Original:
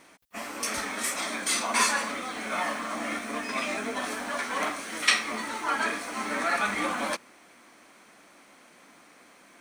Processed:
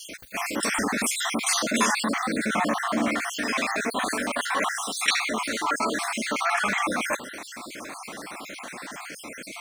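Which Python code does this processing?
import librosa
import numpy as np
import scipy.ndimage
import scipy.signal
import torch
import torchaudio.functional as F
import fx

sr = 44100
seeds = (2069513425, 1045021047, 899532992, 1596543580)

y = fx.spec_dropout(x, sr, seeds[0], share_pct=50)
y = fx.peak_eq(y, sr, hz=180.0, db=9.5, octaves=2.7, at=(0.56, 3.08))
y = fx.env_flatten(y, sr, amount_pct=50)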